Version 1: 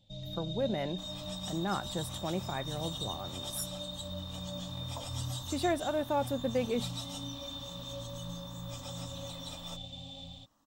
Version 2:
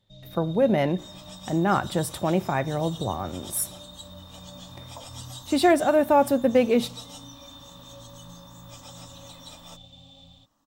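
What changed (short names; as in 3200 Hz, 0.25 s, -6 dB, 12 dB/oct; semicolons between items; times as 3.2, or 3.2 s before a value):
speech +9.5 dB; first sound -4.5 dB; reverb: on, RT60 0.75 s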